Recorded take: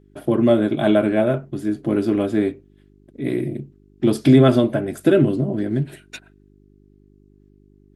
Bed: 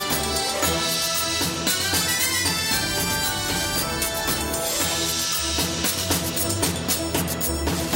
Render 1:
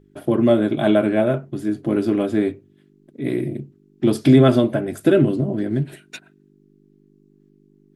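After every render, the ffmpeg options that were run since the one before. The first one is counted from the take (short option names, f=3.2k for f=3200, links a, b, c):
-af "bandreject=f=50:t=h:w=4,bandreject=f=100:t=h:w=4"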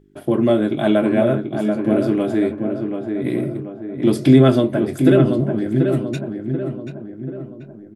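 -filter_complex "[0:a]asplit=2[a][b];[b]adelay=23,volume=-13.5dB[c];[a][c]amix=inputs=2:normalize=0,asplit=2[d][e];[e]adelay=735,lowpass=f=1.9k:p=1,volume=-5.5dB,asplit=2[f][g];[g]adelay=735,lowpass=f=1.9k:p=1,volume=0.5,asplit=2[h][i];[i]adelay=735,lowpass=f=1.9k:p=1,volume=0.5,asplit=2[j][k];[k]adelay=735,lowpass=f=1.9k:p=1,volume=0.5,asplit=2[l][m];[m]adelay=735,lowpass=f=1.9k:p=1,volume=0.5,asplit=2[n][o];[o]adelay=735,lowpass=f=1.9k:p=1,volume=0.5[p];[f][h][j][l][n][p]amix=inputs=6:normalize=0[q];[d][q]amix=inputs=2:normalize=0"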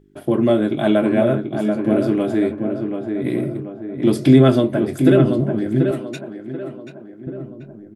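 -filter_complex "[0:a]asettb=1/sr,asplit=3[a][b][c];[a]atrim=end=5.914[d];[b]atrim=start=5.91:end=7.27,asetpts=PTS-STARTPTS,afade=t=in:d=0.004:c=qsin,afade=t=out:st=1.356:d=0.004:c=qsin,highpass=f=440:p=1[e];[c]atrim=start=7.266[f];[d][e]acrossfade=d=0.004:c1=hsin:c2=qsin[g];[g][f]acrossfade=d=0.004:c1=qsin:c2=hsin"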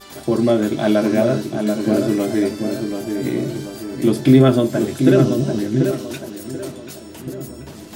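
-filter_complex "[1:a]volume=-15.5dB[a];[0:a][a]amix=inputs=2:normalize=0"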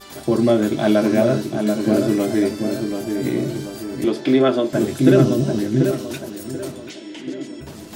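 -filter_complex "[0:a]asettb=1/sr,asplit=3[a][b][c];[a]atrim=end=4.044[d];[b]atrim=start=4.04:end=4.73,asetpts=PTS-STARTPTS,afade=t=in:d=0.004:c=qsin,afade=t=out:st=0.686:d=0.004:c=qsin,acrossover=split=270 6200:gain=0.112 1 0.141[e][f][g];[e][f][g]amix=inputs=3:normalize=0[h];[c]atrim=start=4.726[i];[d][h]acrossfade=d=0.004:c1=hsin:c2=qsin[j];[j][i]acrossfade=d=0.004:c1=qsin:c2=hsin,asplit=3[k][l][m];[k]afade=t=out:st=6.88:d=0.02[n];[l]highpass=270,equalizer=f=290:t=q:w=4:g=10,equalizer=f=440:t=q:w=4:g=-3,equalizer=f=720:t=q:w=4:g=-4,equalizer=f=1.2k:t=q:w=4:g=-7,equalizer=f=2.1k:t=q:w=4:g=9,equalizer=f=3.2k:t=q:w=4:g=9,lowpass=f=6.9k:w=0.5412,lowpass=f=6.9k:w=1.3066,afade=t=in:st=6.88:d=0.02,afade=t=out:st=7.6:d=0.02[o];[m]afade=t=in:st=7.6:d=0.02[p];[n][o][p]amix=inputs=3:normalize=0"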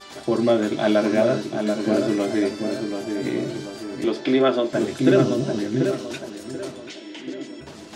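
-af "lowpass=6.7k,lowshelf=f=230:g=-10"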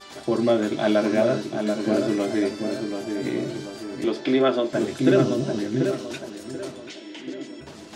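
-af "volume=-1.5dB"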